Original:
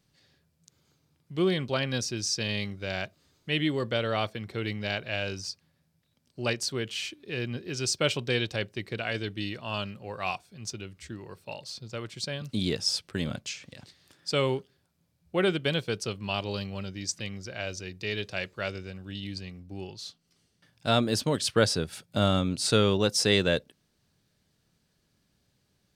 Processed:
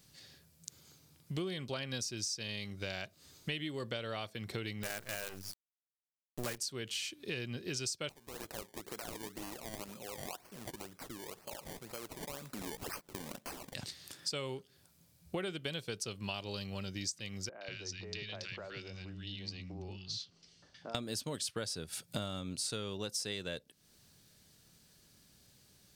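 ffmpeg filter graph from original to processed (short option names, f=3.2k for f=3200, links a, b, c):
-filter_complex "[0:a]asettb=1/sr,asplit=3[a][b][c];[a]atrim=end=4.834[d];[b]atrim=start=4.83:end=6.58,asetpts=PTS-STARTPTS,afade=t=in:d=0.004:c=qsin,afade=t=out:st=1.746:d=0.004:c=qsin,highshelf=f=2.5k:t=q:w=1.5:g=-12,bandreject=f=50:t=h:w=6,bandreject=f=100:t=h:w=6,bandreject=f=150:t=h:w=6,bandreject=f=200:t=h:w=6,bandreject=f=250:t=h:w=6,bandreject=f=300:t=h:w=6,acrusher=bits=6:dc=4:mix=0:aa=0.000001[e];[c]atrim=start=6.576[f];[d][e]acrossfade=d=0.004:c1=hsin:c2=qsin[g];[g][f]acrossfade=d=0.004:c1=qsin:c2=hsin,asettb=1/sr,asplit=3[h][i][j];[h]atrim=end=8.094[k];[i]atrim=start=8.09:end=13.74,asetpts=PTS-STARTPTS,afade=t=in:d=0.004:c=qsin,afade=t=out:st=5.646:d=0.004:c=qsin,highpass=260,lowpass=5k,acompressor=threshold=-50dB:ratio=3:attack=3.2:release=140:knee=1:detection=peak,acrusher=samples=23:mix=1:aa=0.000001:lfo=1:lforange=23:lforate=2[l];[j]atrim=start=13.736[m];[k][l]acrossfade=d=0.004:c1=hsin:c2=qsin[n];[n][m]acrossfade=d=0.004:c1=qsin:c2=hsin,asettb=1/sr,asplit=3[o][p][q];[o]atrim=end=17.494[r];[p]atrim=start=17.49:end=20.95,asetpts=PTS-STARTPTS,afade=t=in:d=0.004:c=qsin,afade=t=out:st=3.456:d=0.004:c=qsin,acompressor=threshold=-44dB:ratio=6:attack=3.2:release=140:knee=1:detection=peak,lowpass=f=5.8k:w=0.5412,lowpass=f=5.8k:w=1.3066,acrossover=split=230|1400[s][t][u];[u]adelay=120[v];[s]adelay=190[w];[w][t][v]amix=inputs=3:normalize=0,atrim=end_sample=152586[x];[q]atrim=start=20.946[y];[r][x]acrossfade=d=0.004:c1=hsin:c2=qsin[z];[z][y]acrossfade=d=0.004:c1=qsin:c2=hsin,highshelf=f=4.5k:g=11.5,acompressor=threshold=-40dB:ratio=10,volume=4dB"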